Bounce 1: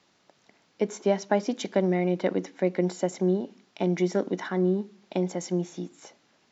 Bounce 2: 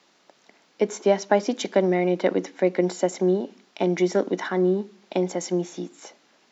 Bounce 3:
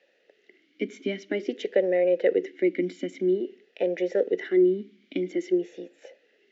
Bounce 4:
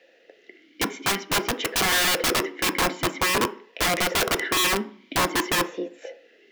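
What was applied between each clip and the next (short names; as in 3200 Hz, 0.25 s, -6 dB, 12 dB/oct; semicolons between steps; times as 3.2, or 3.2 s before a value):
HPF 230 Hz 12 dB/oct; gain +5 dB
vowel sweep e-i 0.5 Hz; gain +8 dB
wrapped overs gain 25 dB; on a send at -8 dB: reverb RT60 0.45 s, pre-delay 3 ms; on the sum: gain +8 dB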